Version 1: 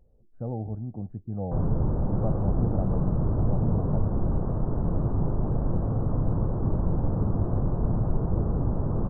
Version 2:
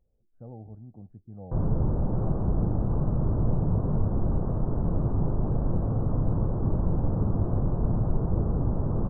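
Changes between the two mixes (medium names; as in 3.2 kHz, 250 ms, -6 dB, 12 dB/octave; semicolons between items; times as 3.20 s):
speech -11.0 dB; background: add distance through air 230 m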